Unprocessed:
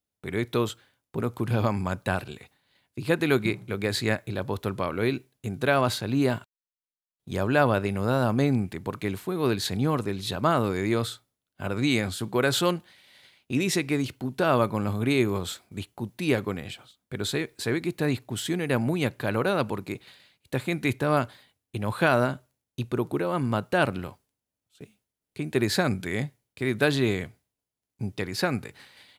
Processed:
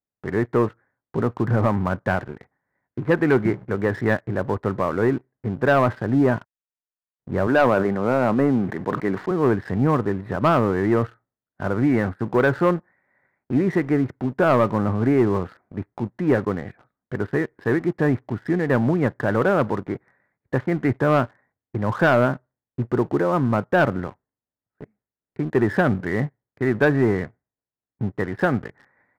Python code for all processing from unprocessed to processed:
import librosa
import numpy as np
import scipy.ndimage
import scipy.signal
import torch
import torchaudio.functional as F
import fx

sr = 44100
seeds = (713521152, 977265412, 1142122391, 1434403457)

y = fx.chain(x, sr, fx.highpass(hz=180.0, slope=12),
    fx.sustainer(db_per_s=60.0), at=(7.47, 9.31))
y = scipy.signal.sosfilt(scipy.signal.ellip(4, 1.0, 40, 1900.0, 'lowpass', fs=sr, output='sos'), y)
y = fx.peak_eq(y, sr, hz=69.0, db=-5.0, octaves=0.68)
y = fx.leveller(y, sr, passes=2)